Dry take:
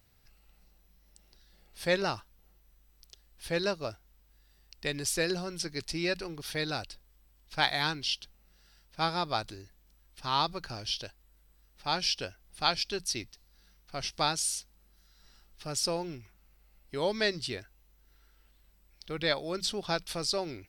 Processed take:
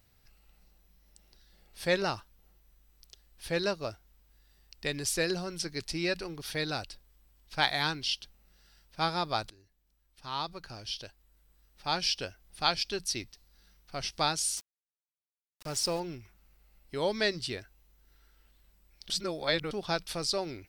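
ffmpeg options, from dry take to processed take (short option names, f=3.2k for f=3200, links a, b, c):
-filter_complex "[0:a]asettb=1/sr,asplit=3[a][b][c];[a]atrim=end=14.574[d];[b]atrim=start=14.57:end=16,asetpts=PTS-STARTPTS,afade=t=in:d=0.004:c=qsin,afade=t=out:st=1.426:d=0.004:c=qsin,aeval=exprs='val(0)*gte(abs(val(0)),0.00891)':c=same[e];[c]atrim=start=15.996[f];[d][e]acrossfade=d=0.004:c1=hsin:c2=qsin[g];[g][f]acrossfade=d=0.004:c1=qsin:c2=hsin,asplit=4[h][i][j][k];[h]atrim=end=9.5,asetpts=PTS-STARTPTS,afade=t=out:st=9.496:d=0.004:c=hsin:silence=0.16788[l];[i]atrim=start=9.5:end=19.102,asetpts=PTS-STARTPTS,afade=t=in:d=2.49:silence=0.16788[m];[j]atrim=start=19.098:end=19.712,asetpts=PTS-STARTPTS,areverse[n];[k]atrim=start=19.708[o];[l][m]concat=n=2:v=0:a=1[p];[p][n]acrossfade=d=0.004:c1=hsin:c2=hsin[q];[q][o]acrossfade=d=0.004:c1=hsin:c2=hsin"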